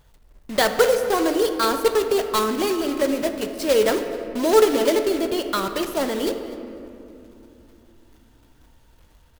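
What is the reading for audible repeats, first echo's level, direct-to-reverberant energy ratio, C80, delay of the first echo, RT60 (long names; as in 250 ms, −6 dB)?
1, −19.0 dB, 6.5 dB, 8.5 dB, 249 ms, 2.9 s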